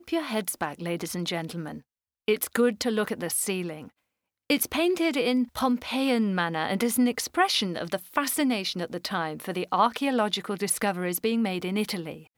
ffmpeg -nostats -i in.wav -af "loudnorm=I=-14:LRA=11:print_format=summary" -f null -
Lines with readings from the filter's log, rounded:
Input Integrated:    -27.0 LUFS
Input True Peak:      -8.7 dBTP
Input LRA:             2.8 LU
Input Threshold:     -37.2 LUFS